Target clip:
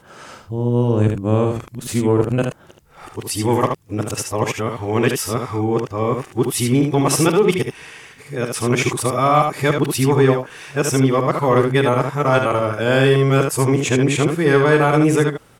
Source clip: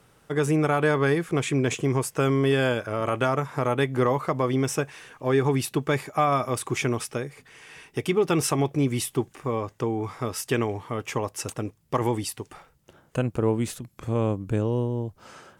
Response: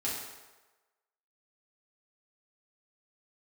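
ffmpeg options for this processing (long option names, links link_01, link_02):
-af "areverse,acontrast=88,aecho=1:1:46|75:0.168|0.531"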